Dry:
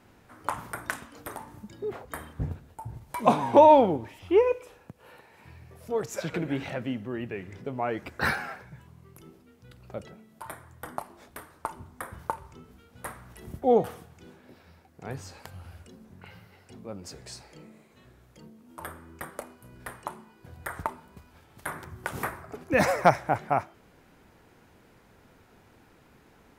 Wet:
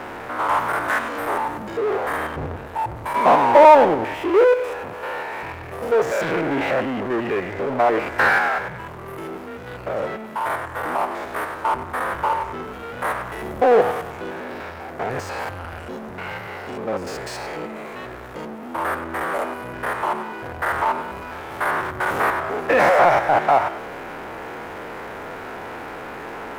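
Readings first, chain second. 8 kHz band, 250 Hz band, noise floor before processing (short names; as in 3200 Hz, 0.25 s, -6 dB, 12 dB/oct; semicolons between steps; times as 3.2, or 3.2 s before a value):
+3.5 dB, +5.0 dB, -59 dBFS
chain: stepped spectrum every 0.1 s; power-law curve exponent 0.5; three-band isolator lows -15 dB, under 360 Hz, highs -15 dB, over 2400 Hz; gain +5 dB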